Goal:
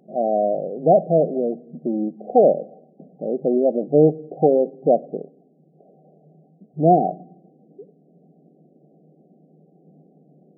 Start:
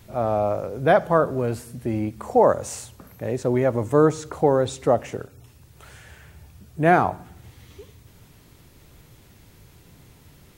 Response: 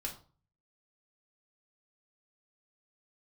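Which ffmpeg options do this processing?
-af "afftfilt=real='re*between(b*sr/4096,150,790)':imag='im*between(b*sr/4096,150,790)':win_size=4096:overlap=0.75,volume=3dB"

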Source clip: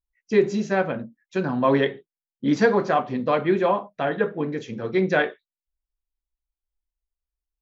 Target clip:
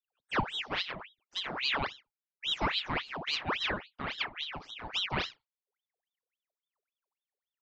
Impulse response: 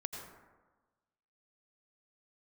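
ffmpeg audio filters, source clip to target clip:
-filter_complex "[0:a]aresample=11025,aresample=44100[link_01];[1:a]atrim=start_sample=2205,atrim=end_sample=3528[link_02];[link_01][link_02]afir=irnorm=-1:irlink=0,aeval=exprs='val(0)*sin(2*PI*2000*n/s+2000*0.8/3.6*sin(2*PI*3.6*n/s))':channel_layout=same,volume=-7dB"

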